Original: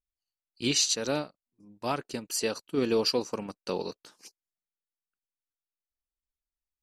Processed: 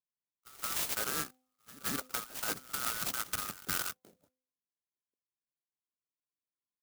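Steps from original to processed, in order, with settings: band-swap scrambler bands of 1000 Hz; HPF 110 Hz; low-pass opened by the level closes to 380 Hz, open at -27 dBFS; LPF 8700 Hz; high shelf 2100 Hz -11.5 dB; de-hum 256.5 Hz, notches 3; negative-ratio compressor -34 dBFS, ratio -1; reverse echo 0.172 s -18.5 dB; clock jitter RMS 0.14 ms

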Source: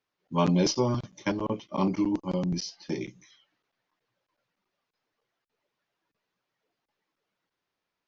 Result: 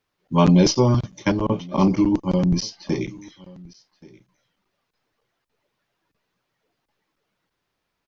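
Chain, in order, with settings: low shelf 110 Hz +11.5 dB; echo 1.128 s -23 dB; gain +6.5 dB

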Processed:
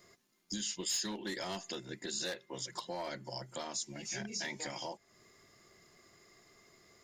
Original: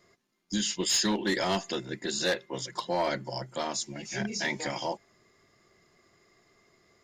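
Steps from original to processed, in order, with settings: compressor 2.5:1, threshold -44 dBFS, peak gain reduction 14 dB; high shelf 5600 Hz +9 dB

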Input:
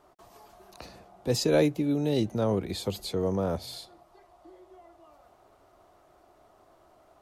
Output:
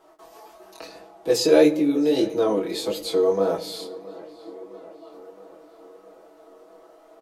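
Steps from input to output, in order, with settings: resonant low shelf 220 Hz -12.5 dB, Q 1.5; comb 6.2 ms, depth 82%; chorus 1.7 Hz, delay 19 ms, depth 5.4 ms; tape echo 0.665 s, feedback 70%, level -18.5 dB, low-pass 3000 Hz; on a send at -11.5 dB: reverb RT60 0.95 s, pre-delay 5 ms; on the sum: gain +6 dB

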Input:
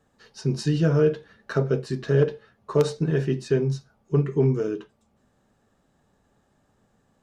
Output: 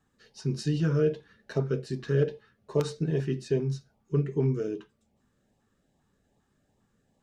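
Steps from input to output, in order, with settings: LFO notch saw up 2.5 Hz 490–1600 Hz; gain -4.5 dB

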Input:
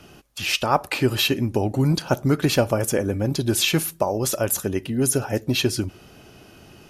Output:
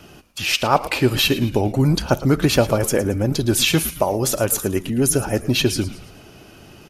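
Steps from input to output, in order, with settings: vibrato 13 Hz 32 cents; frequency-shifting echo 0.111 s, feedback 46%, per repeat -100 Hz, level -15 dB; gain +3 dB

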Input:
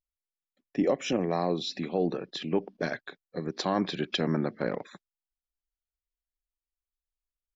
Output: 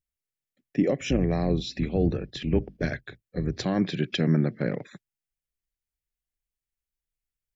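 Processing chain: 1–3.66 octaver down 2 oct, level -3 dB; graphic EQ 125/1000/2000/4000 Hz +11/-11/+4/-4 dB; gain +2 dB

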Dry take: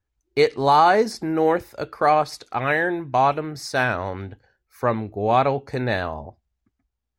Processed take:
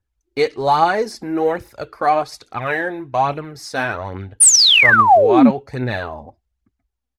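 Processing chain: painted sound fall, 4.4–5.51, 200–10000 Hz -11 dBFS; phaser 1.2 Hz, delay 4.2 ms, feedback 46%; downsampling 32000 Hz; gain -1 dB

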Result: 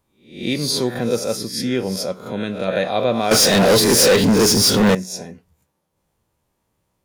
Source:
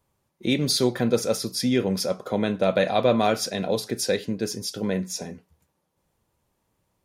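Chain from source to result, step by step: spectral swells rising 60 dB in 0.46 s; 2.11–2.68 bell 710 Hz -7 dB 0.97 oct; 3.31–4.95 sample leveller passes 5

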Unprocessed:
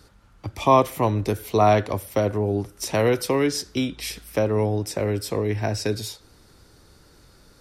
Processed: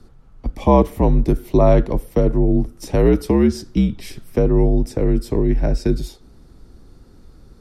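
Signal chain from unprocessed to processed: tilt shelf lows +9 dB, about 680 Hz; frequency shift -65 Hz; gain +2 dB

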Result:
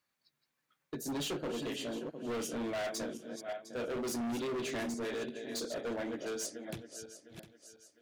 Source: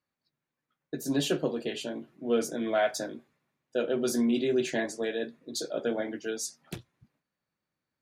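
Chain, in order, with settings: regenerating reverse delay 0.353 s, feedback 49%, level -10 dB; overloaded stage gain 31 dB; mismatched tape noise reduction encoder only; gain -3 dB

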